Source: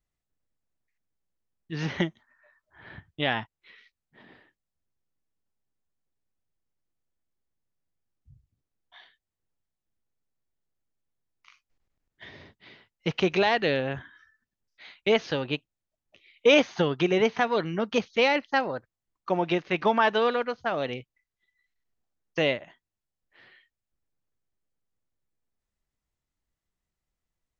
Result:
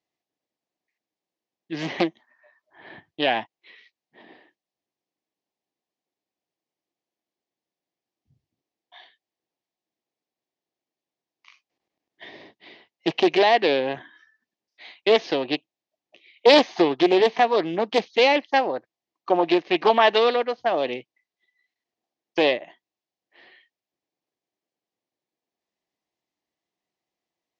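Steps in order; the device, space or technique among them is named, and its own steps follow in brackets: 19.76–20.36 dynamic EQ 2800 Hz, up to +5 dB, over -40 dBFS, Q 1.4; full-range speaker at full volume (Doppler distortion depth 0.58 ms; speaker cabinet 270–6000 Hz, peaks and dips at 330 Hz +5 dB, 720 Hz +5 dB, 1400 Hz -10 dB); gain +4.5 dB

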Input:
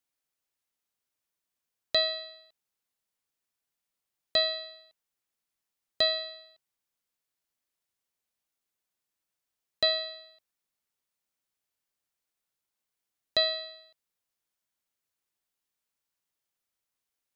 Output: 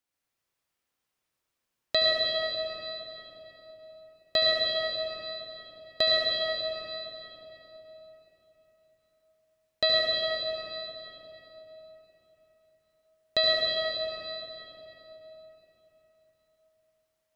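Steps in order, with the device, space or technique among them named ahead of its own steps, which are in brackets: swimming-pool hall (reverb RT60 3.9 s, pre-delay 67 ms, DRR -4.5 dB; high shelf 4700 Hz -6 dB); gain +1.5 dB

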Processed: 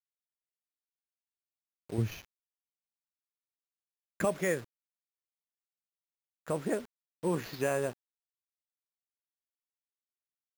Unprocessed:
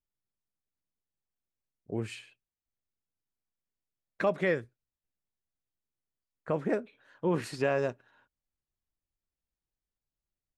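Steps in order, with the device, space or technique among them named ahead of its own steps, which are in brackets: early 8-bit sampler (sample-rate reducer 8800 Hz, jitter 0%; bit-crush 8-bit); 1.98–4.25 tone controls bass +11 dB, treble 0 dB; gain -2.5 dB

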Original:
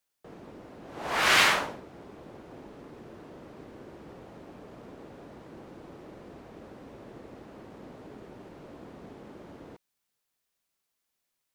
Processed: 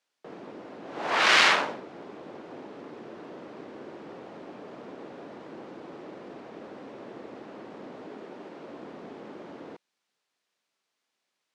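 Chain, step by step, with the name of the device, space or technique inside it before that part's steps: 8.09–8.65 HPF 160 Hz; public-address speaker with an overloaded transformer (core saturation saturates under 3700 Hz; BPF 220–5400 Hz); gain +5.5 dB

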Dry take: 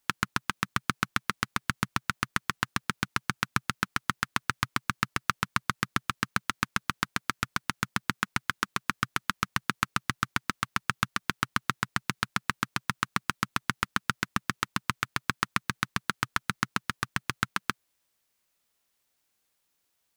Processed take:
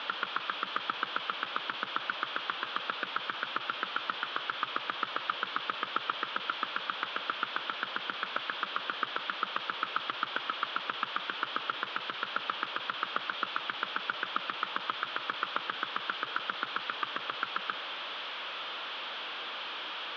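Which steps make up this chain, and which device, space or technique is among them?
digital answering machine (BPF 350–3100 Hz; delta modulation 32 kbps, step -34 dBFS; speaker cabinet 390–3400 Hz, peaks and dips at 400 Hz -5 dB, 720 Hz -5 dB, 1300 Hz +3 dB, 2000 Hz -7 dB, 3300 Hz +8 dB); gain +2 dB

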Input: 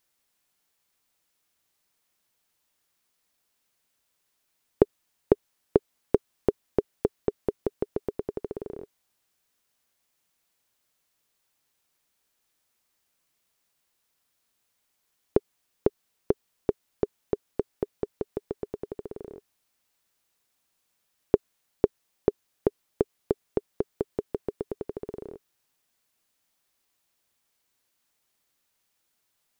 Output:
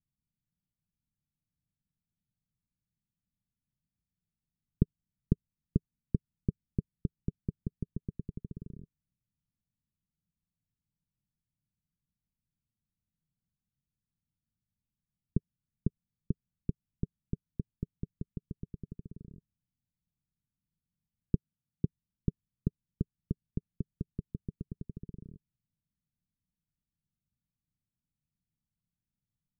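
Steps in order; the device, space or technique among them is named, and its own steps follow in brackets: 21.35–21.85 HPF 78 Hz; the neighbour's flat through the wall (LPF 190 Hz 24 dB/oct; bell 160 Hz +4 dB 0.87 oct); gain +3.5 dB

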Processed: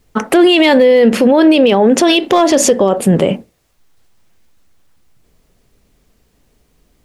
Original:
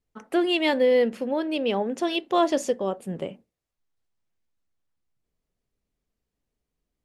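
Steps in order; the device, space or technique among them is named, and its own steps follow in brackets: loud club master (compressor 2.5:1, threshold -23 dBFS, peak gain reduction 6 dB; hard clip -17 dBFS, distortion -30 dB; maximiser +27 dB); gain -1 dB

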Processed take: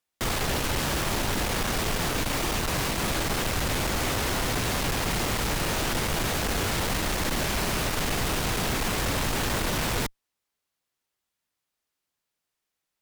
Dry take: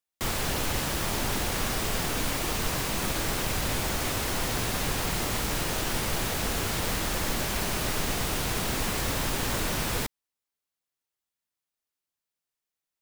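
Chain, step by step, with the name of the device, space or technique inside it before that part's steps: tube preamp driven hard (tube stage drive 31 dB, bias 0.35; high shelf 6400 Hz -5 dB); gain +8.5 dB

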